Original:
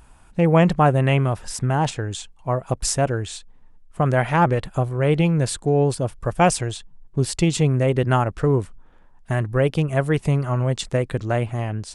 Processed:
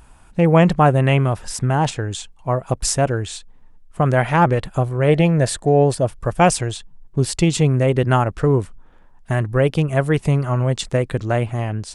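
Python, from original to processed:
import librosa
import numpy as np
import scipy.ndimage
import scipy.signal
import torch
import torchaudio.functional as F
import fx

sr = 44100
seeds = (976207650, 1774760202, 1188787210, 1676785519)

y = fx.small_body(x, sr, hz=(630.0, 1800.0), ring_ms=20, db=fx.line((5.07, 11.0), (6.04, 8.0)), at=(5.07, 6.04), fade=0.02)
y = y * 10.0 ** (2.5 / 20.0)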